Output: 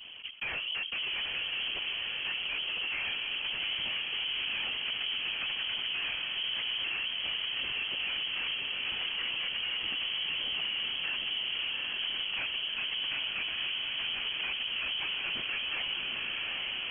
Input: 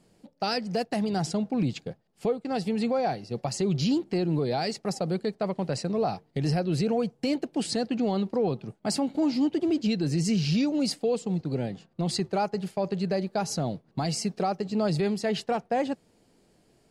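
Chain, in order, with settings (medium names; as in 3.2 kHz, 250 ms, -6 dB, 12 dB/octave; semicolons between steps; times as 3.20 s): comb filter that takes the minimum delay 6.4 ms; gate -51 dBFS, range -12 dB; in parallel at -7 dB: sample-rate reducer 2.4 kHz; on the sum: wavefolder -20.5 dBFS; whisper effect; saturation -27.5 dBFS, distortion -9 dB; frequency inversion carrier 3.2 kHz; on a send: echo that smears into a reverb 799 ms, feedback 57%, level -4 dB; on the sum: level flattener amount 70%; trim -7 dB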